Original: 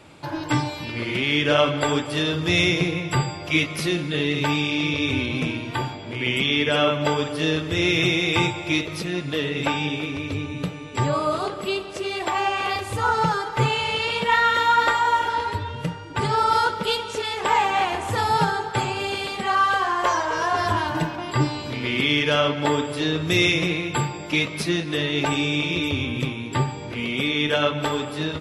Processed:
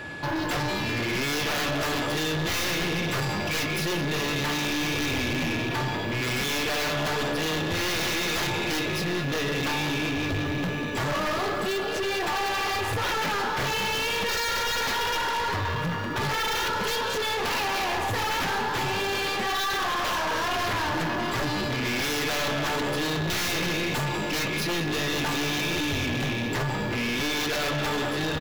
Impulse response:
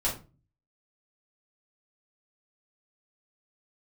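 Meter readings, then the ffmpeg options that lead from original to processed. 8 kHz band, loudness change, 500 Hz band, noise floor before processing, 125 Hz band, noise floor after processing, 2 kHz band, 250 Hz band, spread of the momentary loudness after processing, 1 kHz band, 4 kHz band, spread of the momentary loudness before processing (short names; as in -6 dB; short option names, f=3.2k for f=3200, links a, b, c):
+3.5 dB, -4.0 dB, -4.5 dB, -34 dBFS, -4.5 dB, -29 dBFS, -2.5 dB, -4.5 dB, 2 LU, -6.0 dB, -2.5 dB, 9 LU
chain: -filter_complex "[0:a]asplit=2[a][b];[b]asplit=6[c][d][e][f][g][h];[c]adelay=192,afreqshift=68,volume=-15.5dB[i];[d]adelay=384,afreqshift=136,volume=-20.1dB[j];[e]adelay=576,afreqshift=204,volume=-24.7dB[k];[f]adelay=768,afreqshift=272,volume=-29.2dB[l];[g]adelay=960,afreqshift=340,volume=-33.8dB[m];[h]adelay=1152,afreqshift=408,volume=-38.4dB[n];[i][j][k][l][m][n]amix=inputs=6:normalize=0[o];[a][o]amix=inputs=2:normalize=0,aeval=exprs='0.562*(cos(1*acos(clip(val(0)/0.562,-1,1)))-cos(1*PI/2))+0.224*(cos(7*acos(clip(val(0)/0.562,-1,1)))-cos(7*PI/2))':c=same,asplit=2[p][q];[q]acrusher=bits=4:mix=0:aa=0.000001,volume=-10dB[r];[p][r]amix=inputs=2:normalize=0,aeval=exprs='(tanh(28.2*val(0)+0.2)-tanh(0.2))/28.2':c=same,aeval=exprs='val(0)+0.01*sin(2*PI*1700*n/s)':c=same,equalizer=f=8.7k:t=o:w=0.48:g=-8,volume=3dB"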